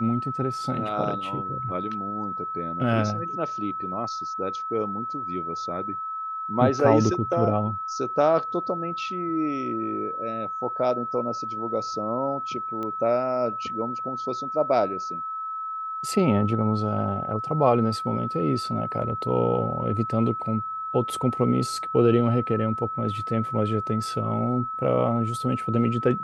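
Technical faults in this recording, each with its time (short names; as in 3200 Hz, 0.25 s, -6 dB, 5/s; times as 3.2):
tone 1300 Hz -29 dBFS
12.83 pop -21 dBFS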